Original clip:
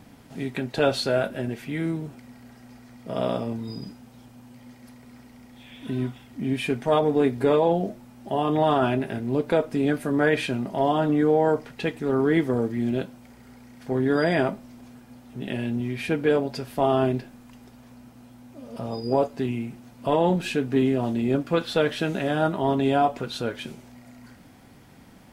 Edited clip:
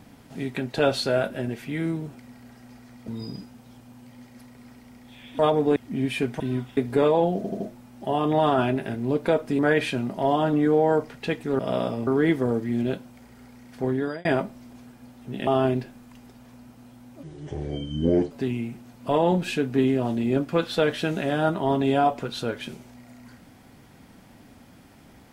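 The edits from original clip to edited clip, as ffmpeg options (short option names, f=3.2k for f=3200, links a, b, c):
-filter_complex "[0:a]asplit=16[a][b][c][d][e][f][g][h][i][j][k][l][m][n][o][p];[a]atrim=end=3.082[q];[b]atrim=start=3.558:end=5.872[r];[c]atrim=start=6.878:end=7.252[s];[d]atrim=start=6.238:end=6.882[t];[e]atrim=start=5.868:end=6.242[u];[f]atrim=start=7.248:end=7.922[v];[g]atrim=start=7.838:end=7.922[w];[h]atrim=start=7.838:end=7.922[x];[i]atrim=start=7.838:end=9.832[y];[j]atrim=start=10.148:end=12.152[z];[k]atrim=start=3.078:end=3.562[aa];[l]atrim=start=12.148:end=14.33,asetpts=PTS-STARTPTS,afade=t=out:st=1.792:d=0.39[ab];[m]atrim=start=14.33:end=15.552,asetpts=PTS-STARTPTS,afade=t=in:d=0.004:c=hsin[ac];[n]atrim=start=16.848:end=18.614[ad];[o]atrim=start=18.61:end=19.29,asetpts=PTS-STARTPTS,asetrate=27783,aresample=44100[ae];[p]atrim=start=19.286[af];[q][r]acrossfade=d=0.004:c1=hsin:c2=hsin[ag];[ag][s]acrossfade=d=0.004:c1=hsin:c2=hsin[ah];[ah][t]acrossfade=d=0.004:c1=hsin:c2=hsin[ai];[ai][u]acrossfade=d=0.004:c1=hsin:c2=hsin[aj];[aj][v]acrossfade=d=0.004:c1=hsin:c2=hsin[ak];[ak][w]acrossfade=d=0.004:c1=hsin:c2=hsin[al];[al][x]acrossfade=d=0.004:c1=hsin:c2=hsin[am];[am][y]acrossfade=d=0.004:c1=hsin:c2=hsin[an];[an][z]acrossfade=d=0.004:c1=hsin:c2=hsin[ao];[ao][aa]acrossfade=d=0.004:c1=hsin:c2=hsin[ap];[ab][ac]concat=n=2:v=0:a=1[aq];[ap][aq]acrossfade=d=0.004:c1=hsin:c2=hsin[ar];[ar][ad]acrossfade=d=0.004:c1=hsin:c2=hsin[as];[as][ae]acrossfade=d=0.004:c1=hsin:c2=hsin[at];[at][af]acrossfade=d=0.004:c1=hsin:c2=hsin"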